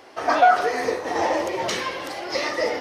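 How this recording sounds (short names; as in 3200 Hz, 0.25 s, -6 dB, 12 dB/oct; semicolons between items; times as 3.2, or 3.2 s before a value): noise floor -47 dBFS; spectral tilt -2.5 dB/oct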